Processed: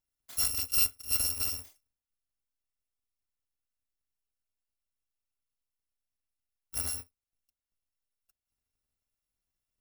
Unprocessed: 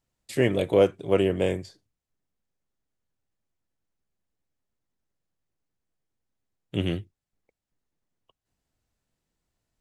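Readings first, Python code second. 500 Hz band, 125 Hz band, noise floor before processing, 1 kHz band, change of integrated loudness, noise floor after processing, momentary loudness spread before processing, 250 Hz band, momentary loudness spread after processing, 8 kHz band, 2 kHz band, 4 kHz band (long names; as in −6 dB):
−33.0 dB, −17.0 dB, below −85 dBFS, −14.0 dB, −3.5 dB, below −85 dBFS, 12 LU, −27.0 dB, 12 LU, can't be measured, −9.0 dB, +3.0 dB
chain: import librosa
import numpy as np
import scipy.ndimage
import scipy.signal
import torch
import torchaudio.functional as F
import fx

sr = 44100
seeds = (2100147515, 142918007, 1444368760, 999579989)

y = fx.bit_reversed(x, sr, seeds[0], block=256)
y = y * 10.0 ** (-7.5 / 20.0)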